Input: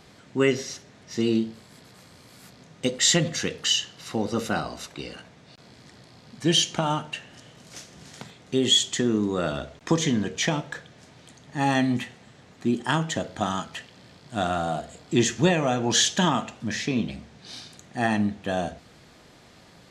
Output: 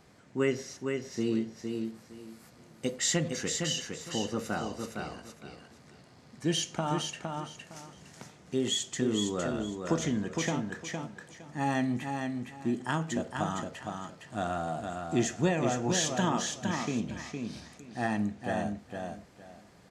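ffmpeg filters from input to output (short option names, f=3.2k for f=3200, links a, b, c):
-filter_complex "[0:a]equalizer=f=3.6k:t=o:w=0.94:g=-6.5,asplit=2[a][b];[b]aecho=0:1:461|922|1383:0.562|0.129|0.0297[c];[a][c]amix=inputs=2:normalize=0,volume=-6.5dB"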